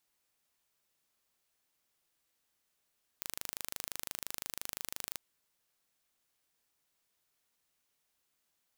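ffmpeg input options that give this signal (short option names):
-f lavfi -i "aevalsrc='0.282*eq(mod(n,1709),0)':d=1.97:s=44100"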